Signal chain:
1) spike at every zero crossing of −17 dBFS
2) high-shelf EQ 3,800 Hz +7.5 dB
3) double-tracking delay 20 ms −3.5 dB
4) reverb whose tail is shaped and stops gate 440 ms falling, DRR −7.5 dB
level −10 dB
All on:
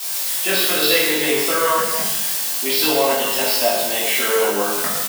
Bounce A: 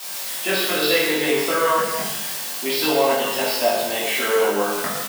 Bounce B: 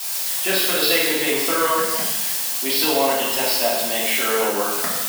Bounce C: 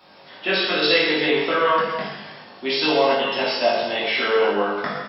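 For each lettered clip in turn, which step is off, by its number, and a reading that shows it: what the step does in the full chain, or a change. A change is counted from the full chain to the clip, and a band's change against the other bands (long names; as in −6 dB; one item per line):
2, 8 kHz band −6.0 dB
3, change in integrated loudness −1.5 LU
1, distortion level −6 dB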